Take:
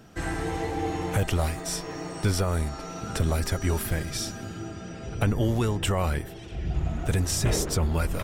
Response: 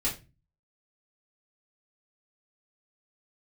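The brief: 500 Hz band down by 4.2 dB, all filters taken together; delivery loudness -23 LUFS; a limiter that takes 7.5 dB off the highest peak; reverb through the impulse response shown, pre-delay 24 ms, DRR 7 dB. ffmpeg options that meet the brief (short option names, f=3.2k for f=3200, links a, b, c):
-filter_complex "[0:a]equalizer=f=500:t=o:g=-5.5,alimiter=limit=-22dB:level=0:latency=1,asplit=2[a][b];[1:a]atrim=start_sample=2205,adelay=24[c];[b][c]afir=irnorm=-1:irlink=0,volume=-13.5dB[d];[a][d]amix=inputs=2:normalize=0,volume=8dB"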